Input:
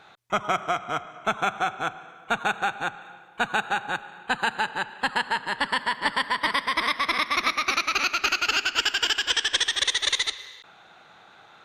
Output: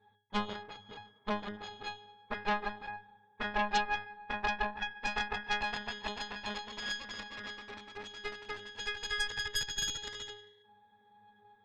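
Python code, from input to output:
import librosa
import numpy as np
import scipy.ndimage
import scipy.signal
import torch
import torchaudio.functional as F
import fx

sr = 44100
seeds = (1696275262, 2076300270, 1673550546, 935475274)

y = fx.octave_resonator(x, sr, note='G#', decay_s=0.44)
y = fx.cheby_harmonics(y, sr, harmonics=(6,), levels_db=(-7,), full_scale_db=-27.5)
y = y * librosa.db_to_amplitude(5.5)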